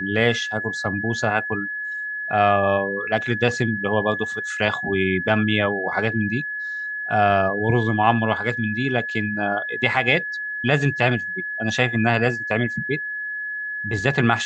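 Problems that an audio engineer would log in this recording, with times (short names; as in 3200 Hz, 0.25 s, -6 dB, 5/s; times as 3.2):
tone 1700 Hz -26 dBFS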